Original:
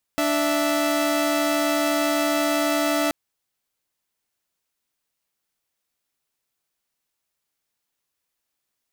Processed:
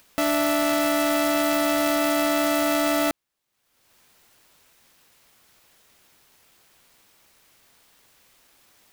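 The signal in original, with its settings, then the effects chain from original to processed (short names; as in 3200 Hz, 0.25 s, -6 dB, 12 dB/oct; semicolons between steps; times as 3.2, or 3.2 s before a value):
chord D4/E5 saw, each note -20 dBFS 2.93 s
upward compressor, threshold -38 dBFS; clock jitter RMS 0.035 ms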